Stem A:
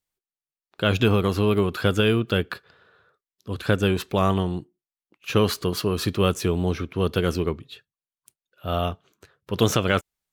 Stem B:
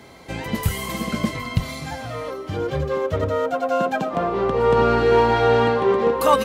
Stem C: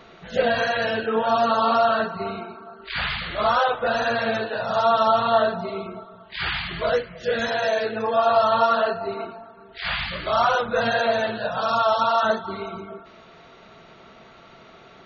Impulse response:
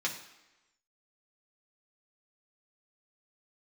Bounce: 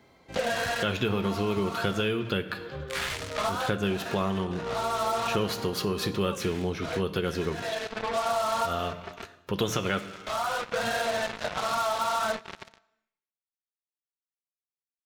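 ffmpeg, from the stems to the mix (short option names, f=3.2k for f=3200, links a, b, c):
-filter_complex "[0:a]volume=0.5dB,asplit=3[a][b][c];[b]volume=-5dB[d];[1:a]equalizer=f=11k:t=o:w=1.2:g=-8,volume=-13.5dB[e];[2:a]equalizer=f=340:w=5.5:g=-14.5,bandreject=f=49.11:t=h:w=4,bandreject=f=98.22:t=h:w=4,bandreject=f=147.33:t=h:w=4,bandreject=f=196.44:t=h:w=4,bandreject=f=245.55:t=h:w=4,bandreject=f=294.66:t=h:w=4,bandreject=f=343.77:t=h:w=4,bandreject=f=392.88:t=h:w=4,bandreject=f=441.99:t=h:w=4,bandreject=f=491.1:t=h:w=4,bandreject=f=540.21:t=h:w=4,bandreject=f=589.32:t=h:w=4,bandreject=f=638.43:t=h:w=4,bandreject=f=687.54:t=h:w=4,acrusher=bits=3:mix=0:aa=0.5,volume=1.5dB,asplit=2[f][g];[g]volume=-21dB[h];[c]apad=whole_len=663771[i];[f][i]sidechaincompress=threshold=-30dB:ratio=5:attack=9.5:release=710[j];[3:a]atrim=start_sample=2205[k];[d][h]amix=inputs=2:normalize=0[l];[l][k]afir=irnorm=-1:irlink=0[m];[a][e][j][m]amix=inputs=4:normalize=0,acompressor=threshold=-30dB:ratio=2.5"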